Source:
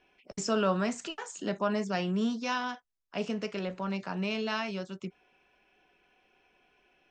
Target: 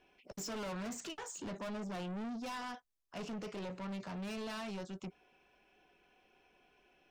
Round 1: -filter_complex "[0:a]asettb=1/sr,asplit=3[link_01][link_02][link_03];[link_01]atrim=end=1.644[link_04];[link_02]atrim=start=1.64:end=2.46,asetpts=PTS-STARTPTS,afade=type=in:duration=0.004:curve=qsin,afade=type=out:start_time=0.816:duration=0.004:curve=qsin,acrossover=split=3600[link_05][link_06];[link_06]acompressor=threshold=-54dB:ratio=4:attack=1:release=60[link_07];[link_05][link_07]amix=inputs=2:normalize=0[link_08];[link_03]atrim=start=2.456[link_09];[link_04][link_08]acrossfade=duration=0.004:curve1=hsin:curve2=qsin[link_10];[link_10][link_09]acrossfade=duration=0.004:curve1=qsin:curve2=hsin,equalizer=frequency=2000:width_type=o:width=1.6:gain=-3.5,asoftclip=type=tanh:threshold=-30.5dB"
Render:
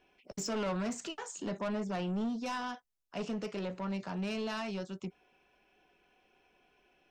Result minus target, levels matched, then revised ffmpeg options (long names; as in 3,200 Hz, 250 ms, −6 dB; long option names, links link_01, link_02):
soft clipping: distortion −5 dB
-filter_complex "[0:a]asettb=1/sr,asplit=3[link_01][link_02][link_03];[link_01]atrim=end=1.644[link_04];[link_02]atrim=start=1.64:end=2.46,asetpts=PTS-STARTPTS,afade=type=in:duration=0.004:curve=qsin,afade=type=out:start_time=0.816:duration=0.004:curve=qsin,acrossover=split=3600[link_05][link_06];[link_06]acompressor=threshold=-54dB:ratio=4:attack=1:release=60[link_07];[link_05][link_07]amix=inputs=2:normalize=0[link_08];[link_03]atrim=start=2.456[link_09];[link_04][link_08]acrossfade=duration=0.004:curve1=hsin:curve2=qsin[link_10];[link_10][link_09]acrossfade=duration=0.004:curve1=qsin:curve2=hsin,equalizer=frequency=2000:width_type=o:width=1.6:gain=-3.5,asoftclip=type=tanh:threshold=-39.5dB"